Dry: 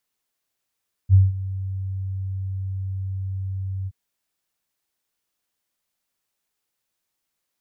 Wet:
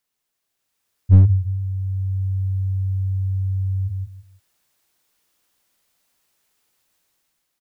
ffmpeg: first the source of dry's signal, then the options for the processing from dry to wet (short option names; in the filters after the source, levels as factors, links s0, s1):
-f lavfi -i "aevalsrc='0.398*sin(2*PI*95.6*t)':d=2.823:s=44100,afade=t=in:d=0.049,afade=t=out:st=0.049:d=0.182:silence=0.141,afade=t=out:st=2.78:d=0.043"
-af "dynaudnorm=f=200:g=7:m=3.16,aecho=1:1:163|326|489:0.501|0.115|0.0265,aeval=exprs='clip(val(0),-1,0.316)':c=same"